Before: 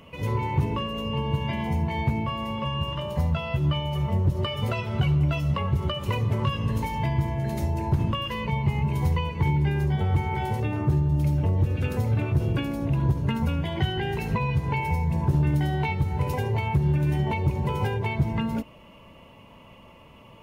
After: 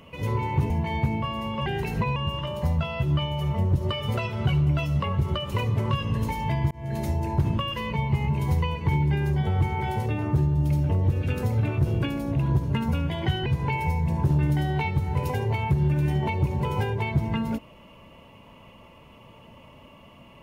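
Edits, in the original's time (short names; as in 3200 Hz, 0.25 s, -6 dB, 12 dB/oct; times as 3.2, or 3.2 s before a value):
0.7–1.74 cut
7.25–7.51 fade in
14–14.5 move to 2.7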